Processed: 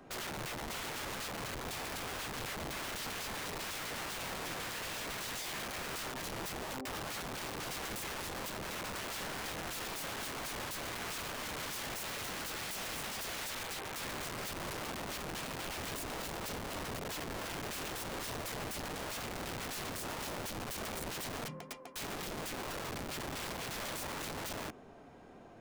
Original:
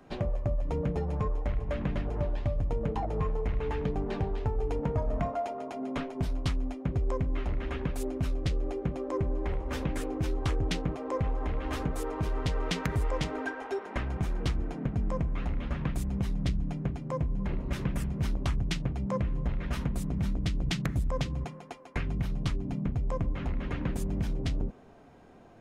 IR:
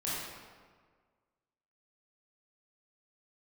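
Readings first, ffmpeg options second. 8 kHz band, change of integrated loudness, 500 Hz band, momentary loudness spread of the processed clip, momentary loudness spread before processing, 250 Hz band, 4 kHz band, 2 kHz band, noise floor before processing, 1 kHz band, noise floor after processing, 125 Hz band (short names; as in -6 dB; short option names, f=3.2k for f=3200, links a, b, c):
+8.5 dB, -6.5 dB, -8.5 dB, 2 LU, 3 LU, -11.5 dB, +4.0 dB, +2.5 dB, -47 dBFS, -2.0 dB, -48 dBFS, -17.5 dB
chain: -af "lowshelf=f=160:g=-5.5,aeval=exprs='(mod(70.8*val(0)+1,2)-1)/70.8':c=same,volume=1dB"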